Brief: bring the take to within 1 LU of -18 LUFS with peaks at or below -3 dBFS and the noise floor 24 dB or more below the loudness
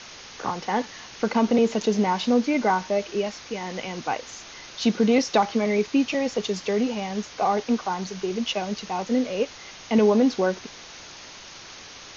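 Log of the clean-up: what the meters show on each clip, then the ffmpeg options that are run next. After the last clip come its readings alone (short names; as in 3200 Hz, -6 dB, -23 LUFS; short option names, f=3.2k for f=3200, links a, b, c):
noise floor -43 dBFS; noise floor target -49 dBFS; loudness -24.5 LUFS; peak -8.5 dBFS; loudness target -18.0 LUFS
-> -af "afftdn=nr=6:nf=-43"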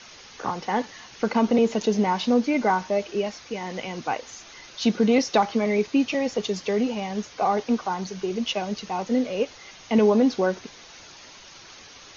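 noise floor -47 dBFS; noise floor target -49 dBFS
-> -af "afftdn=nr=6:nf=-47"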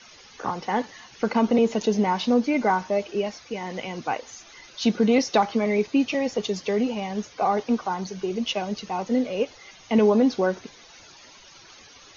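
noise floor -50 dBFS; loudness -24.5 LUFS; peak -8.5 dBFS; loudness target -18.0 LUFS
-> -af "volume=6.5dB,alimiter=limit=-3dB:level=0:latency=1"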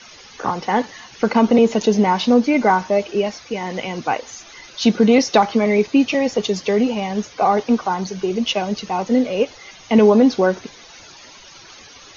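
loudness -18.0 LUFS; peak -3.0 dBFS; noise floor -43 dBFS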